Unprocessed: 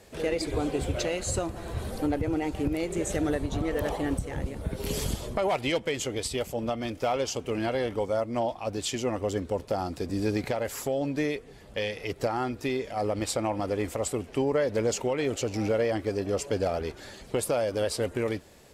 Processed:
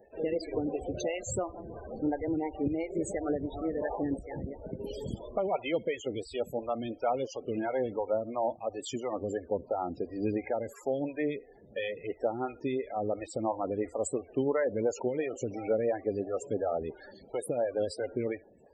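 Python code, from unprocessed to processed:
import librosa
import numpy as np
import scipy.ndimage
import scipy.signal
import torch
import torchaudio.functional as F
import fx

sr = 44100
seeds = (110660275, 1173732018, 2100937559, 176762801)

y = fx.high_shelf(x, sr, hz=8700.0, db=-3.0)
y = fx.echo_feedback(y, sr, ms=69, feedback_pct=15, wet_db=-21.0)
y = fx.spec_topn(y, sr, count=32)
y = fx.low_shelf(y, sr, hz=99.0, db=-9.5)
y = fx.stagger_phaser(y, sr, hz=2.9)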